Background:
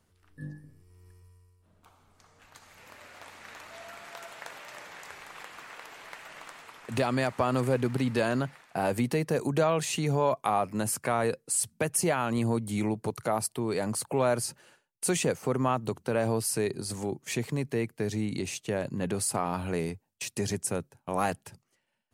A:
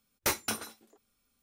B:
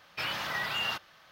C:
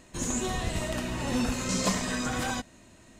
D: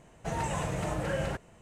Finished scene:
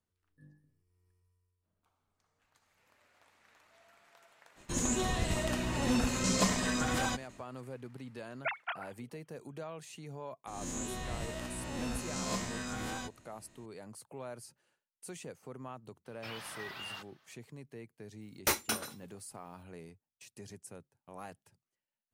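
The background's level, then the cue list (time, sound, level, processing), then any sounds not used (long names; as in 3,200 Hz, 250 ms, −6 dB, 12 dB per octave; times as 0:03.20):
background −18.5 dB
0:04.55: mix in C −1.5 dB, fades 0.05 s + noise gate with hold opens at −43 dBFS, closes at −50 dBFS, hold 39 ms, range −18 dB
0:08.20: mix in A −6 dB + three sine waves on the formant tracks
0:10.47: mix in C −11 dB + peak hold with a rise ahead of every peak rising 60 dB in 0.72 s
0:16.05: mix in B −12 dB
0:18.21: mix in A −0.5 dB
not used: D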